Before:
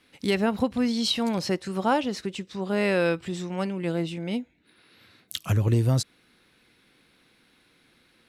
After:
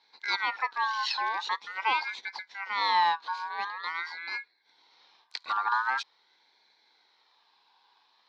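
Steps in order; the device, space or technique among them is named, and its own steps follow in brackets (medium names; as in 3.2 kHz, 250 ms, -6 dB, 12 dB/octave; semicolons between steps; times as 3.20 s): voice changer toy (ring modulator with a swept carrier 1.6 kHz, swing 20%, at 0.45 Hz; cabinet simulation 550–4400 Hz, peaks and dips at 610 Hz -9 dB, 900 Hz +10 dB, 1.3 kHz -8 dB, 1.8 kHz -6 dB, 2.8 kHz -7 dB, 4.1 kHz +9 dB)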